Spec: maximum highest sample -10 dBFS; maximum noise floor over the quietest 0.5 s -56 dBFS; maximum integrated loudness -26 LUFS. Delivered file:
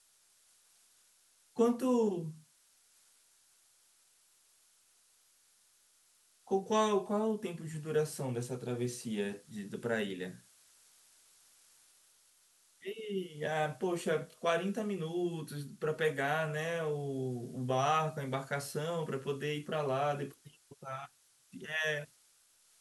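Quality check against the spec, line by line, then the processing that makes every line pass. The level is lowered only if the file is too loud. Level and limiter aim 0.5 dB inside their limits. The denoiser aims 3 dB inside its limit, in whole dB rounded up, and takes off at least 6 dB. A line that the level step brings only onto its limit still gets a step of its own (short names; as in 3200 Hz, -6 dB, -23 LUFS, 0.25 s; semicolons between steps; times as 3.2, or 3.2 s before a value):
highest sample -17.0 dBFS: OK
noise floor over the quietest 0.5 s -69 dBFS: OK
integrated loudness -35.5 LUFS: OK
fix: none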